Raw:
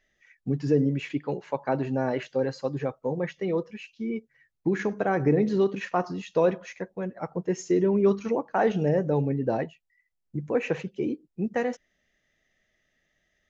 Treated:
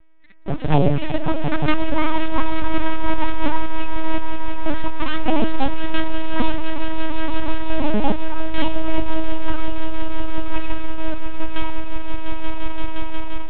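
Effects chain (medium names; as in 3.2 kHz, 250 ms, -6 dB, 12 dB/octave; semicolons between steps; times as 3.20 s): tracing distortion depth 0.23 ms; treble shelf 2.6 kHz +7 dB; mains buzz 60 Hz, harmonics 36, -41 dBFS -8 dB/octave; full-wave rectifier; in parallel at -4 dB: bit crusher 6-bit; on the sum: crossover distortion -48.5 dBFS; touch-sensitive flanger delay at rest 6.5 ms, full sweep at -14 dBFS; on a send: echo with a slow build-up 175 ms, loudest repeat 5, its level -8.5 dB; on the sum: level rider; LPC vocoder at 8 kHz pitch kept; trim -1 dB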